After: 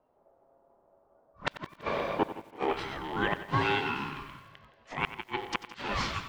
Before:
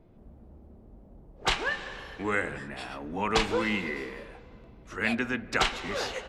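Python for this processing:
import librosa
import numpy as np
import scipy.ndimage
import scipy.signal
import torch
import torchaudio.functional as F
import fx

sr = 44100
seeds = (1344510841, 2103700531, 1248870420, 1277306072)

p1 = fx.rattle_buzz(x, sr, strikes_db=-43.0, level_db=-34.0)
p2 = scipy.signal.sosfilt(scipy.signal.butter(2, 5100.0, 'lowpass', fs=sr, output='sos'), p1)
p3 = p2 * np.sin(2.0 * np.pi * 610.0 * np.arange(len(p2)) / sr)
p4 = fx.peak_eq(p3, sr, hz=450.0, db=14.5, octaves=2.9, at=(1.55, 2.73))
p5 = fx.gate_flip(p4, sr, shuts_db=-17.0, range_db=-35)
p6 = fx.noise_reduce_blind(p5, sr, reduce_db=15)
p7 = p6 + fx.echo_feedback(p6, sr, ms=166, feedback_pct=38, wet_db=-16.5, dry=0)
p8 = fx.echo_crushed(p7, sr, ms=92, feedback_pct=35, bits=9, wet_db=-13.5)
y = p8 * 10.0 ** (3.5 / 20.0)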